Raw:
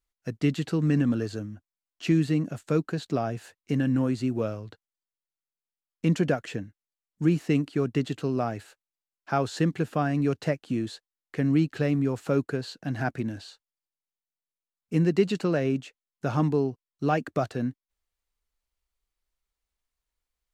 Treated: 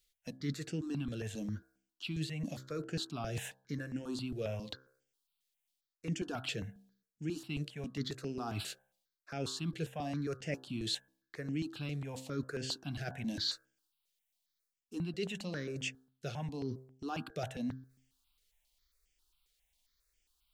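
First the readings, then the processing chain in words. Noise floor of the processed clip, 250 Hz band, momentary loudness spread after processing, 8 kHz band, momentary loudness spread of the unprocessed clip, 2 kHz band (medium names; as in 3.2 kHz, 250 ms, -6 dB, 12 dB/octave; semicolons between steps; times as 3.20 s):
under -85 dBFS, -13.5 dB, 7 LU, -0.5 dB, 11 LU, -8.5 dB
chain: in parallel at +1.5 dB: gain riding within 5 dB 2 s; on the sum: peaking EQ 3.6 kHz +9 dB 1.3 oct; reverse; compression 6:1, threshold -30 dBFS, peak gain reduction 19.5 dB; reverse; treble shelf 5.5 kHz +7 dB; de-hum 65.32 Hz, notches 26; stepped phaser 7.4 Hz 260–4000 Hz; trim -3 dB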